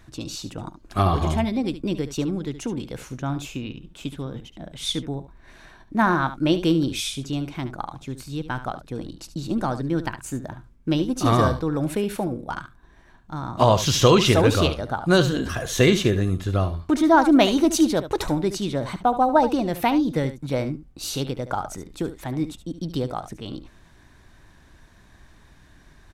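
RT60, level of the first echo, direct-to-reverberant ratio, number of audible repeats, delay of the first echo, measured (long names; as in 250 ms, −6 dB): no reverb audible, −12.5 dB, no reverb audible, 1, 72 ms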